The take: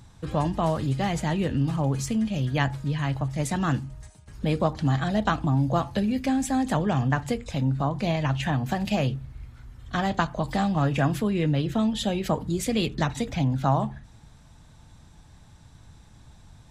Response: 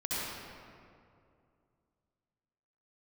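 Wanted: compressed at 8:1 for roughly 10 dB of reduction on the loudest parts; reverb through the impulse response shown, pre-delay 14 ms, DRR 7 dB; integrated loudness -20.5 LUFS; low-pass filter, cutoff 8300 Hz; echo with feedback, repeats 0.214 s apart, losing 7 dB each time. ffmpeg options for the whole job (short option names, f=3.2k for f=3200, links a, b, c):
-filter_complex "[0:a]lowpass=8.3k,acompressor=threshold=-29dB:ratio=8,aecho=1:1:214|428|642|856|1070:0.447|0.201|0.0905|0.0407|0.0183,asplit=2[a][b];[1:a]atrim=start_sample=2205,adelay=14[c];[b][c]afir=irnorm=-1:irlink=0,volume=-13.5dB[d];[a][d]amix=inputs=2:normalize=0,volume=11.5dB"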